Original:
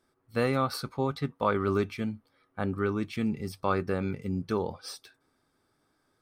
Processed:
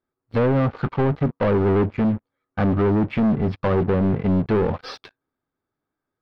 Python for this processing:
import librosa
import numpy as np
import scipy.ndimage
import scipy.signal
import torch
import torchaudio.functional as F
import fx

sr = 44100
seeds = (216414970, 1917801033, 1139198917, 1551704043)

y = fx.env_lowpass_down(x, sr, base_hz=590.0, full_db=-25.5)
y = fx.leveller(y, sr, passes=5)
y = fx.air_absorb(y, sr, metres=310.0)